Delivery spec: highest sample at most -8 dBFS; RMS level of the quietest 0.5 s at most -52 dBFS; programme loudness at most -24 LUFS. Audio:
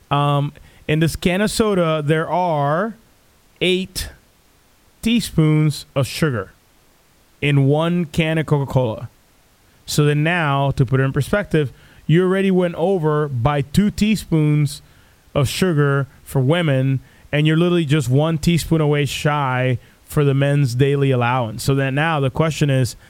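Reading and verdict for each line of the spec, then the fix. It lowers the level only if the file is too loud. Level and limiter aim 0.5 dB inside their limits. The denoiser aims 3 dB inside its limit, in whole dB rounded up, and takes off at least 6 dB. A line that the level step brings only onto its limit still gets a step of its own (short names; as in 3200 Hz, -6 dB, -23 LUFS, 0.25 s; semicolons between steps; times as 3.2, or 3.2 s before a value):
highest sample -3.0 dBFS: fail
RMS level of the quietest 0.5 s -54 dBFS: OK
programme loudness -18.5 LUFS: fail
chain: gain -6 dB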